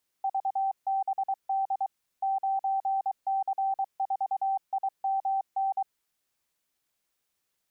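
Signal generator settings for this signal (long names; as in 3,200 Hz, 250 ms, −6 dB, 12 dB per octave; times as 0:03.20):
Morse code "VBD 9C4IMN" 23 words per minute 777 Hz −24.5 dBFS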